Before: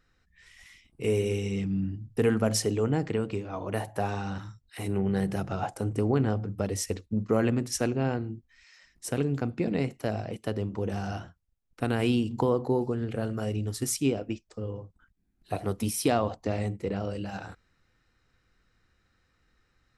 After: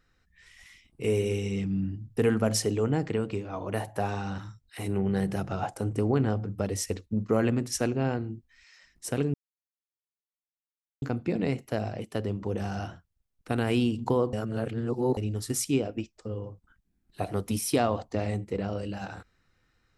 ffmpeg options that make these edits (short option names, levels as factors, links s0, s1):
-filter_complex "[0:a]asplit=4[s0][s1][s2][s3];[s0]atrim=end=9.34,asetpts=PTS-STARTPTS,afade=t=out:st=9.336:d=0.004:c=hsin,apad=pad_dur=1.68[s4];[s1]atrim=start=9.34:end=12.652,asetpts=PTS-STARTPTS,afade=t=in:d=0.004:c=hsin[s5];[s2]atrim=start=12.648:end=13.492,asetpts=PTS-STARTPTS,areverse[s6];[s3]atrim=start=13.488[s7];[s4][s5]concat=n=2:v=0:a=1[s8];[s8][s6]acrossfade=d=0.004:c1=hsin:c2=hsin[s9];[s9][s7]acrossfade=d=0.004:c1=hsin:c2=hsin"